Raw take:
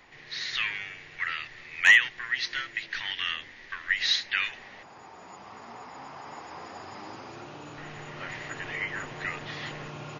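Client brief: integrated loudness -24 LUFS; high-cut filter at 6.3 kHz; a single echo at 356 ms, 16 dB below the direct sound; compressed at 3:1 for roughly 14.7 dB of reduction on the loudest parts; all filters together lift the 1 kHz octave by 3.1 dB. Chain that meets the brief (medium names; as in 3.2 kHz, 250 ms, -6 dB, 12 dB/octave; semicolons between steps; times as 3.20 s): low-pass 6.3 kHz; peaking EQ 1 kHz +4 dB; compression 3:1, threshold -33 dBFS; delay 356 ms -16 dB; trim +12.5 dB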